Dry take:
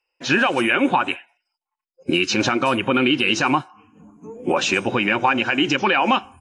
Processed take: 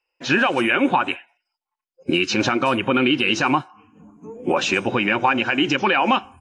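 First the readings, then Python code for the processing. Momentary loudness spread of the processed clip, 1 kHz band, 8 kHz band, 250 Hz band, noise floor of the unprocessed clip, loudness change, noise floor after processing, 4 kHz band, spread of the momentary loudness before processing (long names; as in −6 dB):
6 LU, 0.0 dB, −3.0 dB, 0.0 dB, −85 dBFS, −0.5 dB, below −85 dBFS, −1.0 dB, 6 LU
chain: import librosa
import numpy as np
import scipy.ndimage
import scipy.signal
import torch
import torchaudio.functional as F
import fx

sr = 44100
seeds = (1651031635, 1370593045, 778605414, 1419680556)

y = fx.high_shelf(x, sr, hz=8100.0, db=-8.0)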